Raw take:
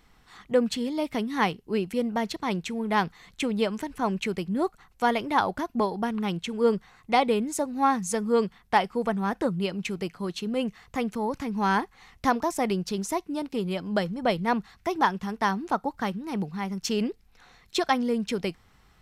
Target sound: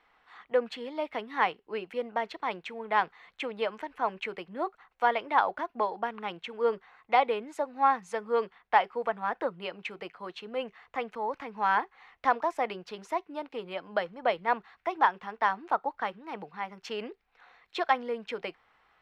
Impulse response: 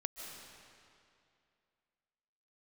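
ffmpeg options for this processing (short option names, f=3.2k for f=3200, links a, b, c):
-filter_complex "[0:a]acrossover=split=420 3200:gain=0.0794 1 0.0708[a][b][c];[a][b][c]amix=inputs=3:normalize=0,bandreject=f=390:w=13"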